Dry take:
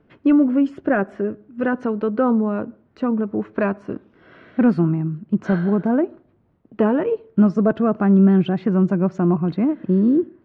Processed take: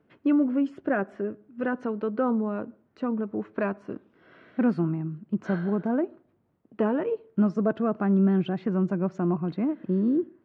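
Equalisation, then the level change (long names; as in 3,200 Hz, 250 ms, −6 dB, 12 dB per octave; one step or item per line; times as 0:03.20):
high-pass filter 130 Hz 6 dB per octave
−6.5 dB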